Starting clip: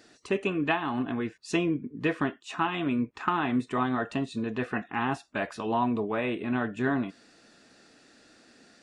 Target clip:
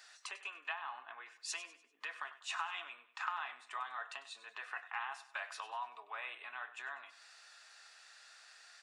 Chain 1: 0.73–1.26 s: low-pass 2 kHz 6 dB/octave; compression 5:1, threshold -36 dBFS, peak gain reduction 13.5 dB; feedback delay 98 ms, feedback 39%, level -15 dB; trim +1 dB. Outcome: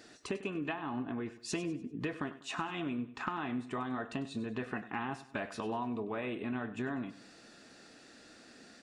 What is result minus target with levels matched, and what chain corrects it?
1 kHz band -3.0 dB
0.73–1.26 s: low-pass 2 kHz 6 dB/octave; compression 5:1, threshold -36 dBFS, peak gain reduction 13.5 dB; high-pass 900 Hz 24 dB/octave; feedback delay 98 ms, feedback 39%, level -15 dB; trim +1 dB

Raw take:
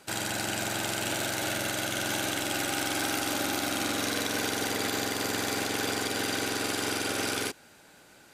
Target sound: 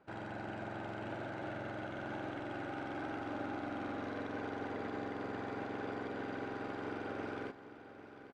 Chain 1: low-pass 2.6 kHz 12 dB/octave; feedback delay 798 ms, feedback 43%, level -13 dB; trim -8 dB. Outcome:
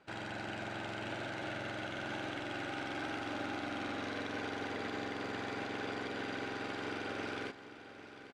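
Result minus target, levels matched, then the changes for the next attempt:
2 kHz band +3.0 dB
change: low-pass 1.3 kHz 12 dB/octave

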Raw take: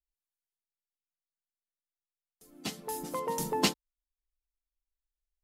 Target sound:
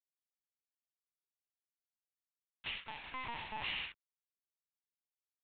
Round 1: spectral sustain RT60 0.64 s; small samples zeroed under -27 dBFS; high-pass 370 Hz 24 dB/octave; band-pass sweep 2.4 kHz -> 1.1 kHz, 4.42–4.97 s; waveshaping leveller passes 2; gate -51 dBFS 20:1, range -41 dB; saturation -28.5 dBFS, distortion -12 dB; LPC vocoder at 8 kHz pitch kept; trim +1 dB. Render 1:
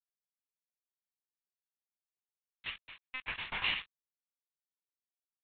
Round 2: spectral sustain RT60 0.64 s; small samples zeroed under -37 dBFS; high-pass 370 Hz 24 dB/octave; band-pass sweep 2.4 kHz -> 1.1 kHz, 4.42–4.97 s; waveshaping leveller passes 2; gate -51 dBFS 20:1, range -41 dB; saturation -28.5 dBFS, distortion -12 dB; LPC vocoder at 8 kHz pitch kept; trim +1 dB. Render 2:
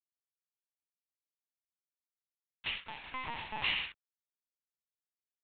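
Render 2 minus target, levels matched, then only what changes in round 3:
saturation: distortion -7 dB
change: saturation -37.5 dBFS, distortion -5 dB

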